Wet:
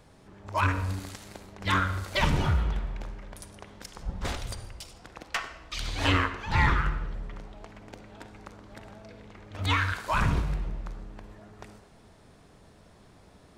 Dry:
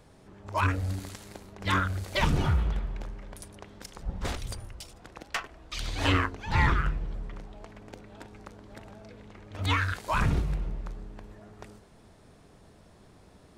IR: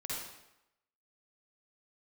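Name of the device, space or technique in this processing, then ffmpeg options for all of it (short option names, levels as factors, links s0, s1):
filtered reverb send: -filter_complex "[0:a]asplit=2[s0][s1];[s1]highpass=f=370:w=0.5412,highpass=f=370:w=1.3066,lowpass=8000[s2];[1:a]atrim=start_sample=2205[s3];[s2][s3]afir=irnorm=-1:irlink=0,volume=0.335[s4];[s0][s4]amix=inputs=2:normalize=0"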